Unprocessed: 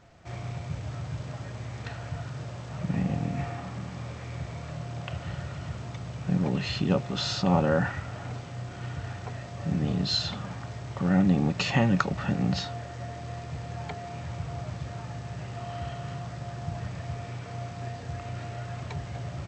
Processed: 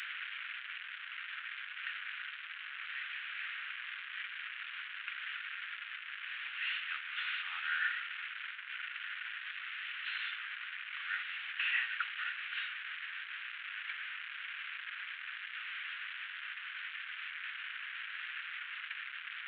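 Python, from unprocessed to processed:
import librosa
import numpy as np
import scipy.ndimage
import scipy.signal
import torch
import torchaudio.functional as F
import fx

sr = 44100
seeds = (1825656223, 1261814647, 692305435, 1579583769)

y = fx.delta_mod(x, sr, bps=16000, step_db=-30.0)
y = scipy.signal.sosfilt(scipy.signal.ellip(4, 1.0, 60, 1500.0, 'highpass', fs=sr, output='sos'), y)
y = y * librosa.db_to_amplitude(2.0)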